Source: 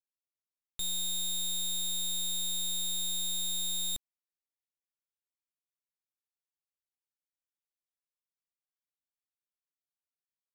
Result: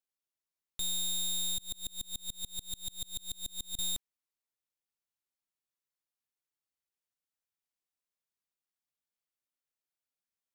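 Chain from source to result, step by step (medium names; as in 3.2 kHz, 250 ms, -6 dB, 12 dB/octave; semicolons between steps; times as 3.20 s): 1.58–3.79 s: sawtooth tremolo in dB swelling 6.9 Hz, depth 31 dB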